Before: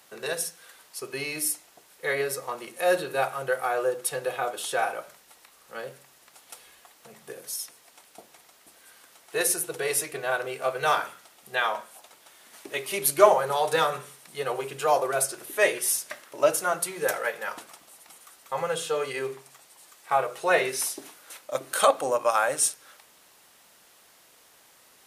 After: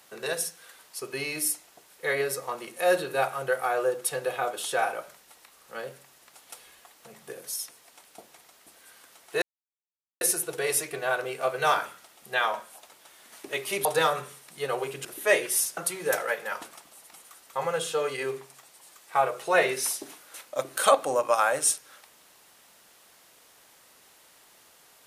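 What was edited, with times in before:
9.42 insert silence 0.79 s
13.06–13.62 cut
14.82–15.37 cut
16.09–16.73 cut

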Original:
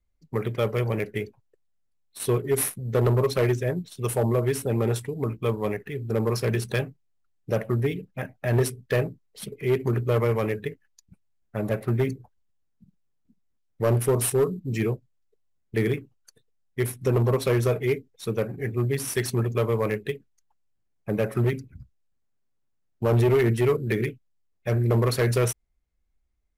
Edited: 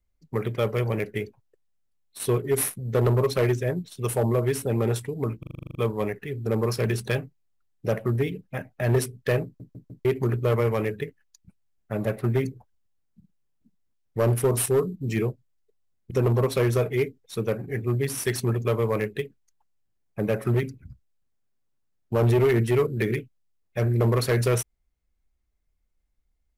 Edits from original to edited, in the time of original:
5.39 stutter 0.04 s, 10 plays
9.09 stutter in place 0.15 s, 4 plays
15.75–17.01 cut

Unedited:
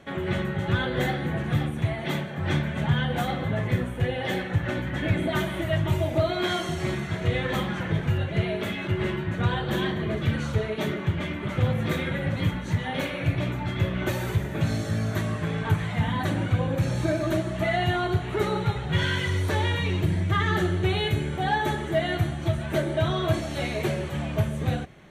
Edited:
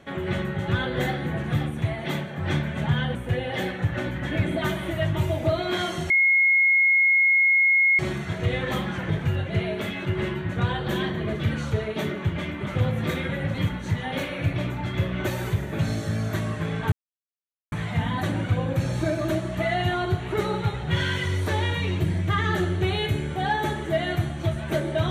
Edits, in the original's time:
3.15–3.86 cut
6.81 add tone 2160 Hz -15.5 dBFS 1.89 s
15.74 insert silence 0.80 s

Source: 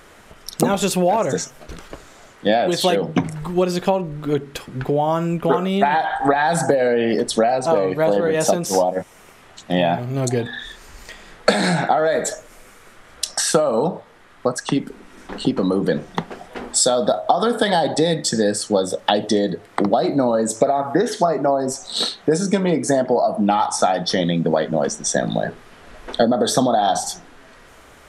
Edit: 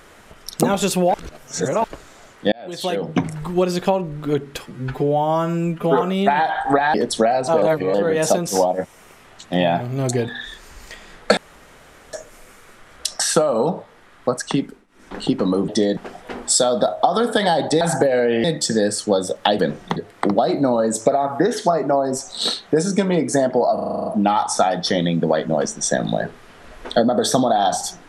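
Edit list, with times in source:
1.14–1.84 reverse
2.52–3.23 fade in
4.66–5.56 stretch 1.5×
6.49–7.12 move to 18.07
7.8–8.12 reverse
11.55–12.31 room tone
14.75–15.35 dip -21.5 dB, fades 0.30 s
15.86–16.23 swap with 19.22–19.51
23.29 stutter 0.04 s, 9 plays

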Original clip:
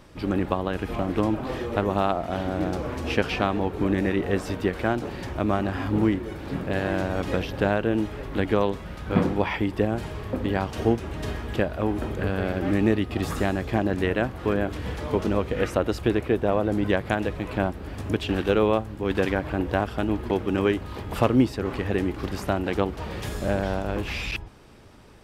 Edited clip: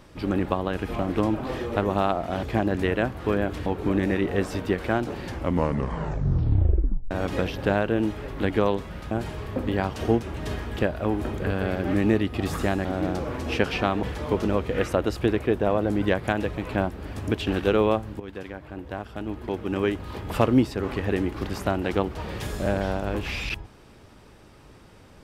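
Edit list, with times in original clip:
2.43–3.61 swap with 13.62–14.85
5.19 tape stop 1.87 s
9.06–9.88 cut
19.02–20.96 fade in quadratic, from -13.5 dB

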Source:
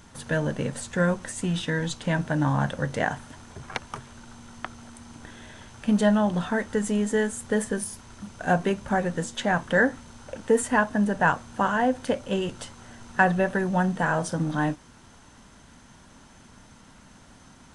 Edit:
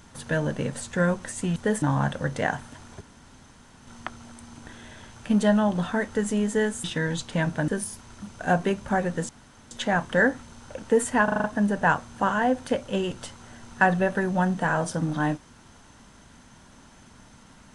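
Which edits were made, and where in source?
1.56–2.4 swap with 7.42–7.68
3.59–4.45 room tone
9.29 insert room tone 0.42 s
10.82 stutter 0.04 s, 6 plays

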